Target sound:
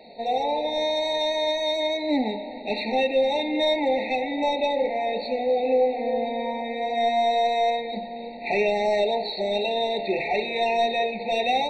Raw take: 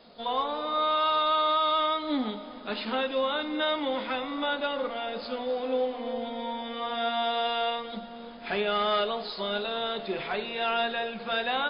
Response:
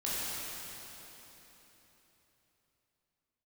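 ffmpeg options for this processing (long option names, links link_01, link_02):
-filter_complex "[0:a]asplit=2[link_01][link_02];[link_02]highpass=frequency=720:poles=1,volume=10dB,asoftclip=type=tanh:threshold=-16.5dB[link_03];[link_01][link_03]amix=inputs=2:normalize=0,lowpass=frequency=2500:poles=1,volume=-6dB,afftfilt=real='re*eq(mod(floor(b*sr/1024/910),2),0)':imag='im*eq(mod(floor(b*sr/1024/910),2),0)':win_size=1024:overlap=0.75,volume=6.5dB"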